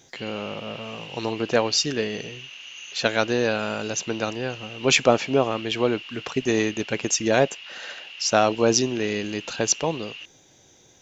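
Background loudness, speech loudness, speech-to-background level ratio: -38.0 LUFS, -24.0 LUFS, 14.0 dB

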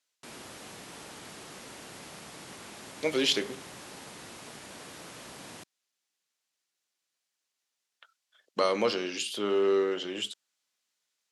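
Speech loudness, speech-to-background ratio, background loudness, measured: -29.0 LUFS, 16.0 dB, -45.0 LUFS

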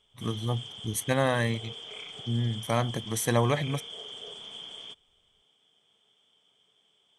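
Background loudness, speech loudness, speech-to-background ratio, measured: -40.0 LUFS, -29.5 LUFS, 10.5 dB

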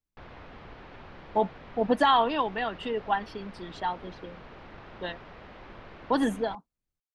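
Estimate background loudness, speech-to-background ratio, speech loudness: -48.0 LUFS, 19.5 dB, -28.5 LUFS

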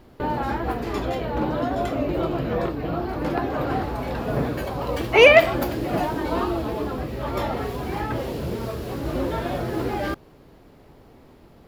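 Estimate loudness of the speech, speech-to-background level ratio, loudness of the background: -14.5 LUFS, 12.0 dB, -26.5 LUFS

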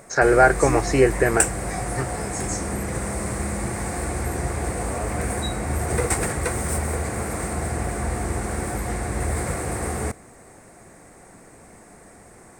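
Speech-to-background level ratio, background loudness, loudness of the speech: 8.0 dB, -26.5 LUFS, -18.5 LUFS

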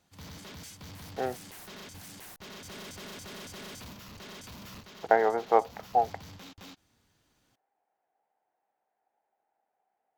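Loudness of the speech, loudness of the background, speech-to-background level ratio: -28.0 LUFS, -45.5 LUFS, 17.5 dB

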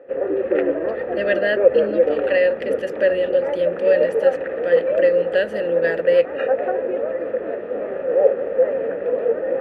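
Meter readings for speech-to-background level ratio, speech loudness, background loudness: 1.0 dB, -21.0 LUFS, -22.0 LUFS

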